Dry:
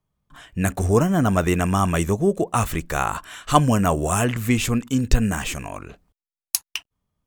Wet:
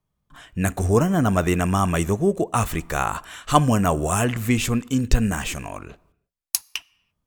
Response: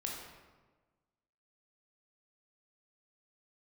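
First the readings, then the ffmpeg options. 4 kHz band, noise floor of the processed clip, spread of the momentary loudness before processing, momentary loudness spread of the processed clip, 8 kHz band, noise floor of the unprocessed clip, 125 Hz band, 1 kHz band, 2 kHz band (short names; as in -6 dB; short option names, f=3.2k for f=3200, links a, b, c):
-0.5 dB, -78 dBFS, 13 LU, 13 LU, -0.5 dB, under -85 dBFS, -0.5 dB, -0.5 dB, -0.5 dB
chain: -filter_complex "[0:a]asplit=2[a][b];[1:a]atrim=start_sample=2205,afade=t=out:st=0.4:d=0.01,atrim=end_sample=18081[c];[b][c]afir=irnorm=-1:irlink=0,volume=-21.5dB[d];[a][d]amix=inputs=2:normalize=0,volume=-1dB"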